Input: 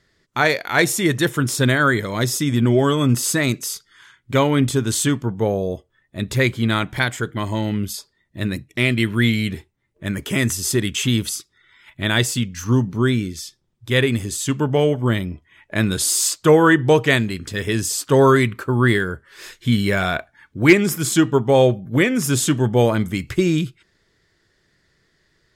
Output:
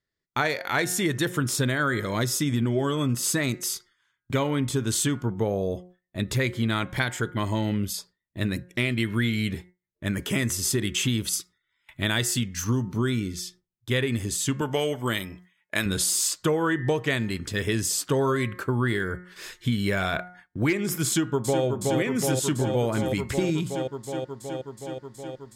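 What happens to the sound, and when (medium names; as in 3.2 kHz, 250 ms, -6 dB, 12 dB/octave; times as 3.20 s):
11.33–13.20 s: treble shelf 5 kHz +5.5 dB
14.61–15.86 s: tilt EQ +3 dB/octave
21.07–21.65 s: echo throw 370 ms, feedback 80%, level -5 dB
whole clip: de-hum 180 Hz, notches 12; gate with hold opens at -35 dBFS; compression 6:1, threshold -19 dBFS; trim -2 dB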